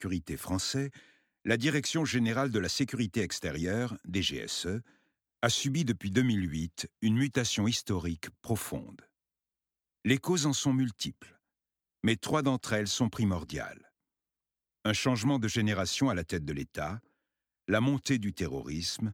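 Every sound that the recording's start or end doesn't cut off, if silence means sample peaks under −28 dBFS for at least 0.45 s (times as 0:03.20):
0:01.47–0:04.77
0:05.43–0:08.76
0:10.06–0:11.08
0:12.04–0:13.63
0:14.86–0:16.90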